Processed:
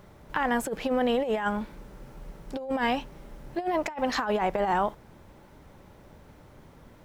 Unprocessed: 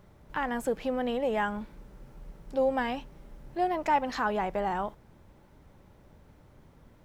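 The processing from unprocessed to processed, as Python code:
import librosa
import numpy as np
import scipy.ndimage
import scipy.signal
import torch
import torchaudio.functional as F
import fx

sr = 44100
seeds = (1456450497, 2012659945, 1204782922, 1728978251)

y = fx.low_shelf(x, sr, hz=200.0, db=-5.0)
y = fx.over_compress(y, sr, threshold_db=-31.0, ratio=-0.5)
y = y * 10.0 ** (5.0 / 20.0)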